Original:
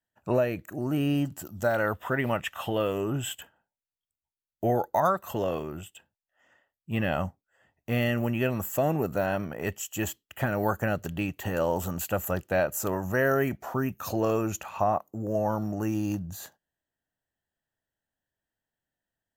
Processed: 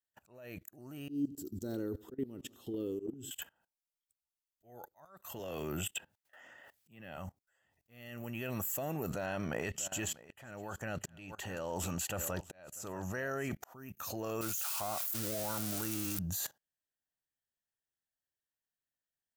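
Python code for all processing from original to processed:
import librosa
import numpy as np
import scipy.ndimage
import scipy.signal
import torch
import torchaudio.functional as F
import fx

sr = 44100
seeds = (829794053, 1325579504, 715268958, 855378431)

y = fx.chain(x, sr, fx.curve_eq(hz=(180.0, 270.0, 410.0, 610.0, 1100.0, 2400.0, 4100.0, 8400.0), db=(0, 11, 10, -16, -18, -23, -4, -10)),
    fx.echo_feedback(ms=88, feedback_pct=50, wet_db=-21.0), at=(1.09, 3.31))
y = fx.chain(y, sr, fx.highpass(hz=41.0, slope=12),
    fx.peak_eq(hz=1100.0, db=-3.5, octaves=0.24),
    fx.band_squash(depth_pct=70), at=(5.39, 7.17))
y = fx.chain(y, sr, fx.lowpass(hz=8400.0, slope=12),
    fx.echo_single(ms=643, db=-16.5), at=(9.1, 13.52))
y = fx.chain(y, sr, fx.crossing_spikes(level_db=-21.5),
    fx.peak_eq(hz=1400.0, db=10.0, octaves=0.28),
    fx.level_steps(step_db=18), at=(14.41, 16.19))
y = fx.high_shelf(y, sr, hz=2400.0, db=10.0)
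y = fx.level_steps(y, sr, step_db=20)
y = fx.auto_swell(y, sr, attack_ms=711.0)
y = y * 10.0 ** (3.0 / 20.0)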